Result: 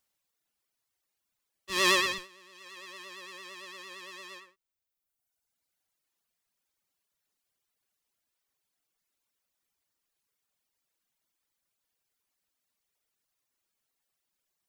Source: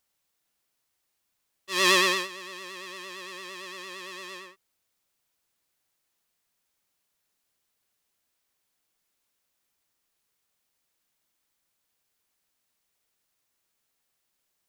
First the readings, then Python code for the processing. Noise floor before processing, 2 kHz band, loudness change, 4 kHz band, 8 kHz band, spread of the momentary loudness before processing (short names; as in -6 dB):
-78 dBFS, -4.0 dB, -3.5 dB, -4.0 dB, -4.0 dB, 19 LU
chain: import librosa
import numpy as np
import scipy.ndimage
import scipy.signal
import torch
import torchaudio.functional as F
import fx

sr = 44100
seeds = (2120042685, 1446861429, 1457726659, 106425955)

p1 = fx.dereverb_blind(x, sr, rt60_s=1.5)
p2 = fx.schmitt(p1, sr, flips_db=-26.5)
p3 = p1 + F.gain(torch.from_numpy(p2), -6.5).numpy()
y = F.gain(torch.from_numpy(p3), -2.5).numpy()